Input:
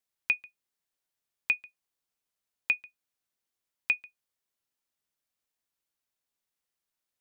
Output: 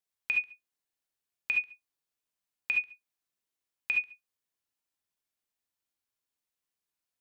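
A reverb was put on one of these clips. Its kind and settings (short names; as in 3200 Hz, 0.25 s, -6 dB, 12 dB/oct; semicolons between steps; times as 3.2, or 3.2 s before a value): non-linear reverb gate 90 ms rising, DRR 2 dB; gain -4.5 dB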